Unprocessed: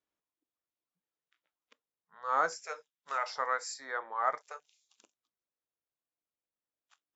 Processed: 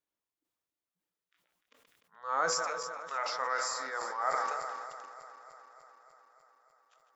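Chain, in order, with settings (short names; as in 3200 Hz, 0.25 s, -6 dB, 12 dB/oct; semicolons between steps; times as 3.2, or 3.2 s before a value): regenerating reverse delay 0.149 s, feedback 82%, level -12.5 dB; sustainer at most 25 dB/s; gain -2.5 dB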